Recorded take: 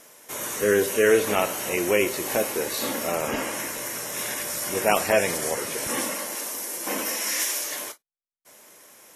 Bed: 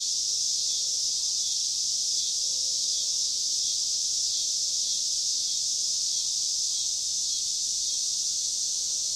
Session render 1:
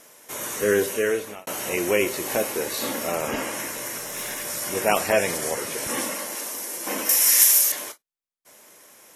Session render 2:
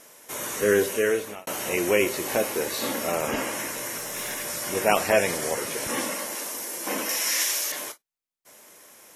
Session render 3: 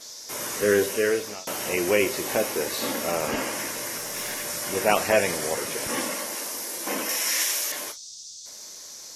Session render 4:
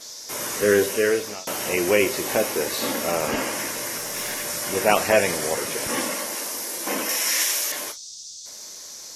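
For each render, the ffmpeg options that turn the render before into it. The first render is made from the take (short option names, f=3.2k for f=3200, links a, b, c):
-filter_complex "[0:a]asettb=1/sr,asplit=3[a][b][c];[a]atrim=end=3.984[d];[b]atrim=start=3.98:end=4.45,asetpts=PTS-STARTPTS,afade=t=in:d=0.004:c=qsin,afade=t=out:st=0.466:d=0.004:c=qsin,aeval=exprs='(tanh(14.1*val(0)+0.15)-tanh(0.15))/14.1':c=same[e];[c]atrim=start=4.446[f];[d][e]acrossfade=d=0.004:c1=hsin:c2=qsin[g];[g][f]acrossfade=d=0.004:c1=qsin:c2=hsin,asettb=1/sr,asplit=3[h][i][j];[h]atrim=end=7.094[k];[i]atrim=start=7.09:end=7.72,asetpts=PTS-STARTPTS,afade=t=in:d=0.004:c=qsin,afade=t=out:st=0.626:d=0.004:c=qsin,aemphasis=mode=production:type=bsi[l];[j]atrim=start=7.716[m];[k][l]acrossfade=d=0.004:c1=hsin:c2=qsin[n];[n][m]acrossfade=d=0.004:c1=qsin:c2=hsin,asplit=2[o][p];[o]atrim=end=1.47,asetpts=PTS-STARTPTS,afade=t=out:st=0.79:d=0.68[q];[p]atrim=start=1.47,asetpts=PTS-STARTPTS,afade=t=in:d=0.004:c=hsin[r];[q][r]concat=n=2:v=0:a=1"
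-filter_complex "[0:a]acrossover=split=5900[a][b];[b]acompressor=threshold=-30dB:ratio=4:attack=1:release=60[c];[a][c]amix=inputs=2:normalize=0"
-filter_complex "[1:a]volume=-13.5dB[a];[0:a][a]amix=inputs=2:normalize=0"
-af "volume=2.5dB"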